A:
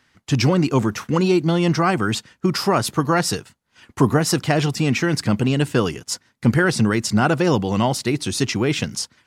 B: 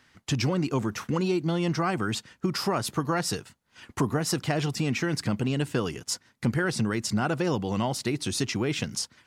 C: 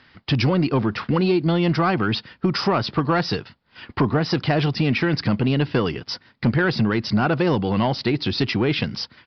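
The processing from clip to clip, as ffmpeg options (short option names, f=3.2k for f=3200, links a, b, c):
-af "acompressor=threshold=-30dB:ratio=2"
-af "asoftclip=type=tanh:threshold=-17.5dB,aresample=11025,aresample=44100,volume=8dB"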